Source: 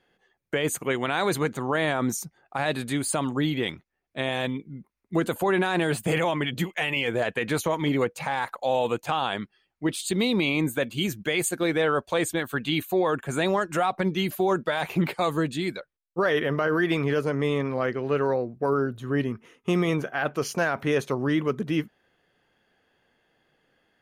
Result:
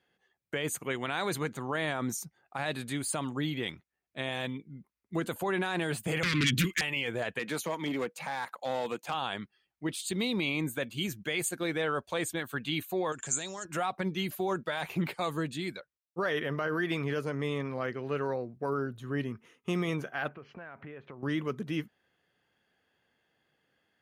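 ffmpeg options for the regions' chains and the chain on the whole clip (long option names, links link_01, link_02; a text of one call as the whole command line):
ffmpeg -i in.wav -filter_complex "[0:a]asettb=1/sr,asplit=3[link_01][link_02][link_03];[link_01]atrim=end=6.234[link_04];[link_02]atrim=start=6.23:end=6.81,asetpts=PTS-STARTPTS,afade=type=in:duration=0.004:curve=qsin,afade=type=out:start_time=0.576:duration=0.004:curve=qsin,aeval=exprs='0.188*sin(PI/2*2.82*val(0)/0.188)':channel_layout=same,asuperstop=centerf=710:order=4:qfactor=0.67[link_05];[link_03]atrim=start=6.806[link_06];[link_04][link_05]acrossfade=duration=0.004:curve1=hsin:curve2=qsin[link_07];[link_07][link_06]acrossfade=duration=0.004:curve1=qsin:curve2=hsin,asettb=1/sr,asplit=3[link_08][link_09][link_10];[link_08]atrim=end=7.394[link_11];[link_09]atrim=start=7.39:end=9.14,asetpts=PTS-STARTPTS,afade=type=in:duration=0.004:curve=qsin,afade=type=out:start_time=1.746:duration=0.004:curve=qsin,highpass=frequency=170:width=0.5412,highpass=frequency=170:width=1.3066,aeval=exprs='clip(val(0),-1,0.0891)':channel_layout=same[link_12];[link_10]atrim=start=9.136[link_13];[link_11][link_12]acrossfade=duration=0.004:curve1=hsin:curve2=qsin[link_14];[link_14][link_13]acrossfade=duration=0.004:curve1=qsin:curve2=hsin,asettb=1/sr,asplit=3[link_15][link_16][link_17];[link_15]atrim=end=13.124[link_18];[link_16]atrim=start=13.12:end=13.65,asetpts=PTS-STARTPTS,afade=type=in:duration=0.004:curve=qsin,afade=type=out:start_time=0.526:duration=0.004:curve=qsin,equalizer=frequency=5700:width_type=o:width=1.1:gain=14.5,acompressor=threshold=-31dB:ratio=4:attack=3.2:release=140:knee=1:detection=peak,lowpass=frequency=7400:width_type=q:width=6.4[link_19];[link_17]atrim=start=13.646[link_20];[link_18][link_19]acrossfade=duration=0.004:curve1=hsin:curve2=qsin[link_21];[link_21][link_20]acrossfade=duration=0.004:curve1=qsin:curve2=hsin,asettb=1/sr,asplit=3[link_22][link_23][link_24];[link_22]atrim=end=20.284[link_25];[link_23]atrim=start=20.28:end=21.23,asetpts=PTS-STARTPTS,afade=type=in:duration=0.004:curve=qsin,afade=type=out:start_time=0.946:duration=0.004:curve=qsin,lowpass=frequency=2500:width=0.5412,lowpass=frequency=2500:width=1.3066,acompressor=threshold=-36dB:ratio=5:attack=3.2:release=140:knee=1:detection=peak[link_26];[link_24]atrim=start=21.226[link_27];[link_25][link_26]acrossfade=duration=0.004:curve1=hsin:curve2=qsin[link_28];[link_28][link_27]acrossfade=duration=0.004:curve1=qsin:curve2=hsin,highpass=60,equalizer=frequency=470:width=0.47:gain=-3.5,volume=-5dB" out.wav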